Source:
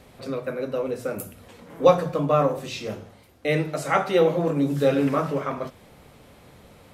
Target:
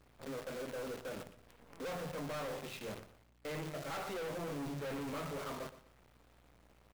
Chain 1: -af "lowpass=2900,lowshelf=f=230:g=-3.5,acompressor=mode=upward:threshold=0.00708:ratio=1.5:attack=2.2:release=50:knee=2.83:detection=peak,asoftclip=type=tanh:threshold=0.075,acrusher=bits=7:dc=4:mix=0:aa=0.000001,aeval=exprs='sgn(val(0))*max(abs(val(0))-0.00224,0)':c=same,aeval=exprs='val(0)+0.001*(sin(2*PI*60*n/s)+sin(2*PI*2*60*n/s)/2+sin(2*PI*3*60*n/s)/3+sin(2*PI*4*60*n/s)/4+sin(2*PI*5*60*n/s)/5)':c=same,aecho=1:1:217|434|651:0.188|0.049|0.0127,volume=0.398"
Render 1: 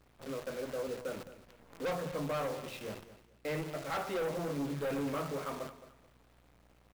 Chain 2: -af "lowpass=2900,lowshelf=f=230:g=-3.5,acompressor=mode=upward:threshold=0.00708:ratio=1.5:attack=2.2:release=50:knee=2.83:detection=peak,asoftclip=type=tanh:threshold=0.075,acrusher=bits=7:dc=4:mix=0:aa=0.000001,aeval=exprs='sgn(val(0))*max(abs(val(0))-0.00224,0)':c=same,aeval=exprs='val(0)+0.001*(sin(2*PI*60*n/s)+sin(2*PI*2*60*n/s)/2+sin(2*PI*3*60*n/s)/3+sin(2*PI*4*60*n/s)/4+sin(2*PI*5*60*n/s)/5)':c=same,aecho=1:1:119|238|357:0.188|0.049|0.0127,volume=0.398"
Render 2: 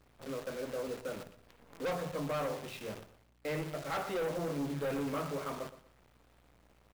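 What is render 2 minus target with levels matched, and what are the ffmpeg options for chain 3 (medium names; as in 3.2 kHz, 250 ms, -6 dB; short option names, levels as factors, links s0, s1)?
saturation: distortion -4 dB
-af "lowpass=2900,lowshelf=f=230:g=-3.5,acompressor=mode=upward:threshold=0.00708:ratio=1.5:attack=2.2:release=50:knee=2.83:detection=peak,asoftclip=type=tanh:threshold=0.0282,acrusher=bits=7:dc=4:mix=0:aa=0.000001,aeval=exprs='sgn(val(0))*max(abs(val(0))-0.00224,0)':c=same,aeval=exprs='val(0)+0.001*(sin(2*PI*60*n/s)+sin(2*PI*2*60*n/s)/2+sin(2*PI*3*60*n/s)/3+sin(2*PI*4*60*n/s)/4+sin(2*PI*5*60*n/s)/5)':c=same,aecho=1:1:119|238|357:0.188|0.049|0.0127,volume=0.398"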